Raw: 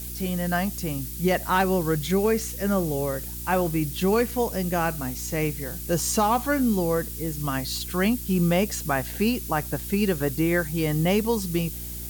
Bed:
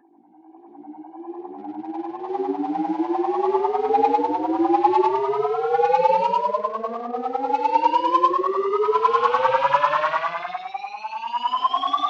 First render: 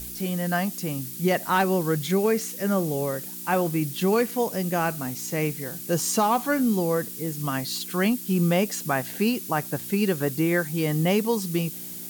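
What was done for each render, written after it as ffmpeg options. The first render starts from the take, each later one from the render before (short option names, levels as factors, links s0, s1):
-af "bandreject=f=60:t=h:w=4,bandreject=f=120:t=h:w=4"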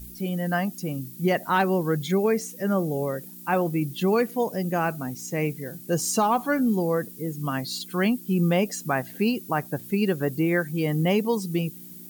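-af "afftdn=nr=12:nf=-37"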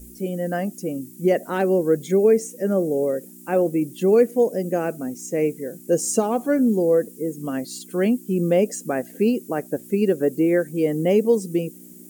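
-af "equalizer=f=125:t=o:w=1:g=-10,equalizer=f=250:t=o:w=1:g=5,equalizer=f=500:t=o:w=1:g=10,equalizer=f=1000:t=o:w=1:g=-11,equalizer=f=4000:t=o:w=1:g=-10,equalizer=f=8000:t=o:w=1:g=8,equalizer=f=16000:t=o:w=1:g=-5"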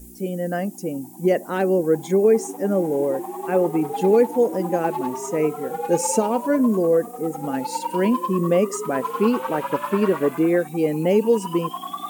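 -filter_complex "[1:a]volume=0.335[s0];[0:a][s0]amix=inputs=2:normalize=0"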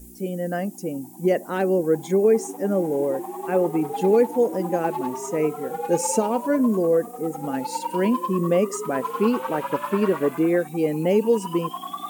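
-af "volume=0.841"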